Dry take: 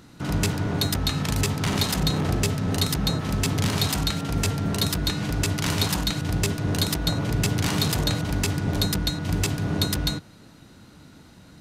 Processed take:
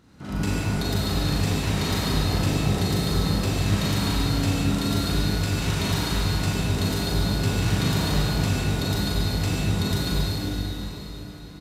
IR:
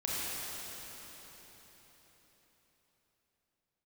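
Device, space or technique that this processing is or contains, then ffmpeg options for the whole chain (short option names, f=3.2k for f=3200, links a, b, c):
swimming-pool hall: -filter_complex "[1:a]atrim=start_sample=2205[a];[0:a][a]afir=irnorm=-1:irlink=0,highshelf=f=4.7k:g=-5,asplit=2[b][c];[c]adelay=40,volume=-5.5dB[d];[b][d]amix=inputs=2:normalize=0,volume=-7dB"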